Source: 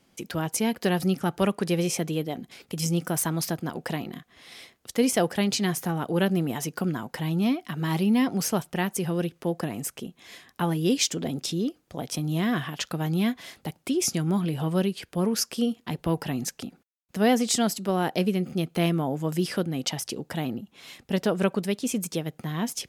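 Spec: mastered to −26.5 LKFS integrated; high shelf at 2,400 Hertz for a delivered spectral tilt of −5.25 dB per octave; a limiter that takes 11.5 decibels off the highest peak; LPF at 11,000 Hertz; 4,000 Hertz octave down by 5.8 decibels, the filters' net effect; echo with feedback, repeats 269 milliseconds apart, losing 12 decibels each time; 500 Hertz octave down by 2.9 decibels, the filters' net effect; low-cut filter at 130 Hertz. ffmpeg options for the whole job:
ffmpeg -i in.wav -af "highpass=130,lowpass=11000,equalizer=frequency=500:width_type=o:gain=-3.5,highshelf=frequency=2400:gain=-4,equalizer=frequency=4000:width_type=o:gain=-4,alimiter=limit=-22dB:level=0:latency=1,aecho=1:1:269|538|807:0.251|0.0628|0.0157,volume=6dB" out.wav

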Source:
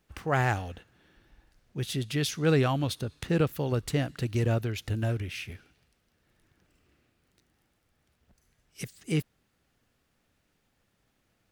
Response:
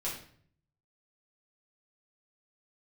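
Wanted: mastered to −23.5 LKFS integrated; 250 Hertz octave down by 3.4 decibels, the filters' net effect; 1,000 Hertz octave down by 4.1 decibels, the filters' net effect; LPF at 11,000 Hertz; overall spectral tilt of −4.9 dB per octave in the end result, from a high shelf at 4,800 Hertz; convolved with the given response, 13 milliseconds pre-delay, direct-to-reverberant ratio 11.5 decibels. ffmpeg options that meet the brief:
-filter_complex "[0:a]lowpass=11000,equalizer=frequency=250:width_type=o:gain=-5,equalizer=frequency=1000:width_type=o:gain=-6,highshelf=frequency=4800:gain=7,asplit=2[link_01][link_02];[1:a]atrim=start_sample=2205,adelay=13[link_03];[link_02][link_03]afir=irnorm=-1:irlink=0,volume=-15dB[link_04];[link_01][link_04]amix=inputs=2:normalize=0,volume=7.5dB"

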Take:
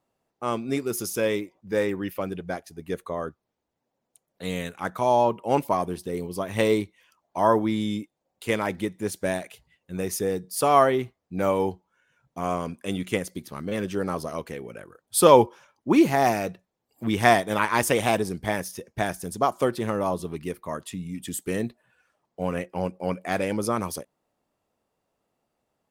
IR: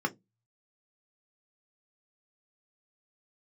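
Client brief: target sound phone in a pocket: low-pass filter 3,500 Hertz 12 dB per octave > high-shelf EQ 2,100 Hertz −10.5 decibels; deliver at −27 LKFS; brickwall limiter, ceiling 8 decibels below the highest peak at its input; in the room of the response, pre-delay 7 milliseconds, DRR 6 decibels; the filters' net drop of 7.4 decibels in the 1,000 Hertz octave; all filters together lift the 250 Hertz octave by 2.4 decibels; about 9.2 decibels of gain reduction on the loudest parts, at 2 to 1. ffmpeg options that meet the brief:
-filter_complex "[0:a]equalizer=frequency=250:width_type=o:gain=4,equalizer=frequency=1000:width_type=o:gain=-8.5,acompressor=threshold=-28dB:ratio=2,alimiter=limit=-20dB:level=0:latency=1,asplit=2[link_01][link_02];[1:a]atrim=start_sample=2205,adelay=7[link_03];[link_02][link_03]afir=irnorm=-1:irlink=0,volume=-13.5dB[link_04];[link_01][link_04]amix=inputs=2:normalize=0,lowpass=3500,highshelf=frequency=2100:gain=-10.5,volume=5.5dB"

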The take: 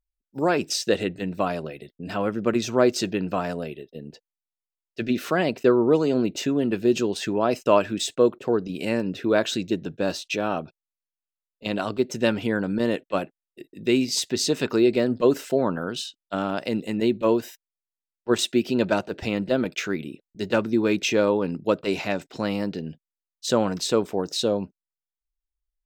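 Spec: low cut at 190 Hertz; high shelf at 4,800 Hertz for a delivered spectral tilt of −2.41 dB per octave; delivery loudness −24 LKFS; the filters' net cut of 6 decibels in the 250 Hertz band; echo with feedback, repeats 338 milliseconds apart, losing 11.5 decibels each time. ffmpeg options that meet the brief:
ffmpeg -i in.wav -af "highpass=190,equalizer=frequency=250:width_type=o:gain=-7,highshelf=frequency=4800:gain=8,aecho=1:1:338|676|1014:0.266|0.0718|0.0194,volume=1.5dB" out.wav

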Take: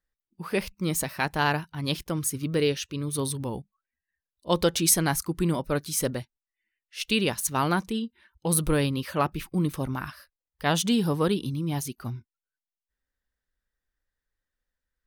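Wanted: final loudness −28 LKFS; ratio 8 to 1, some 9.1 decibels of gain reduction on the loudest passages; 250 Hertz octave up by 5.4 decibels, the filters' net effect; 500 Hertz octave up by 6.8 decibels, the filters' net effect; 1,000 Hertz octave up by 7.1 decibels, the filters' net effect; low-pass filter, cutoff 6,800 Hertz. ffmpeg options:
ffmpeg -i in.wav -af "lowpass=6800,equalizer=frequency=250:width_type=o:gain=5.5,equalizer=frequency=500:width_type=o:gain=5,equalizer=frequency=1000:width_type=o:gain=7,acompressor=threshold=-21dB:ratio=8" out.wav

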